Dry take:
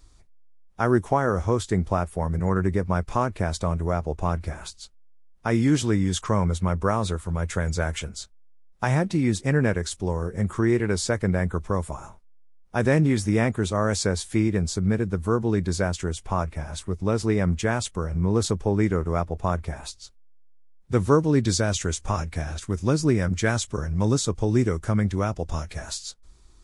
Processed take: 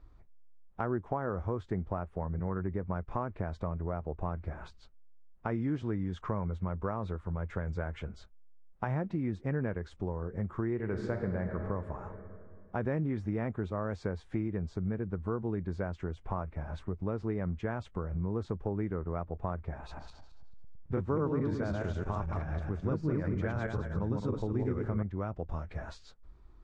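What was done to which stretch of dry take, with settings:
0:10.74–0:11.57: thrown reverb, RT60 2.3 s, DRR 4 dB
0:19.78–0:25.03: feedback delay that plays each chunk backwards 108 ms, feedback 46%, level −0.5 dB
whole clip: low-pass filter 1,600 Hz 12 dB per octave; downward compressor 2.5 to 1, threshold −32 dBFS; level −2 dB

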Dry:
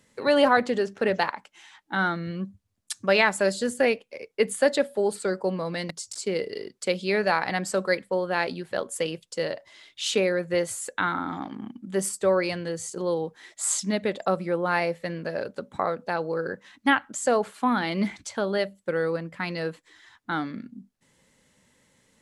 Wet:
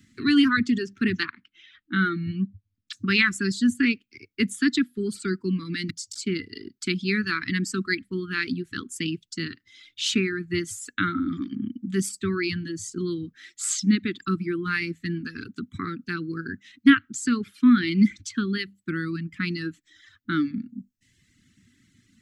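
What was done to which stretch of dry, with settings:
0:01.25–0:02.93: low-pass filter 4,200 Hz 24 dB per octave
whole clip: elliptic band-stop filter 340–1,200 Hz, stop band 60 dB; reverb reduction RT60 0.99 s; graphic EQ with 15 bands 100 Hz +10 dB, 250 Hz +7 dB, 1,000 Hz −11 dB, 10,000 Hz −10 dB; level +4.5 dB

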